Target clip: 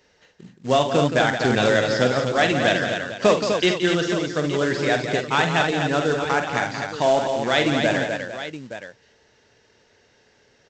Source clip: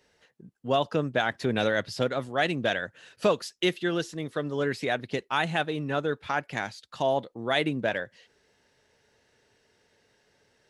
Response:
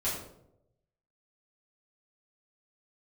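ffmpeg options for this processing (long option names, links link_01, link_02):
-af "aresample=16000,acrusher=bits=4:mode=log:mix=0:aa=0.000001,aresample=44100,aecho=1:1:48|72|173|250|451|870:0.398|0.178|0.355|0.501|0.211|0.237,volume=5.5dB"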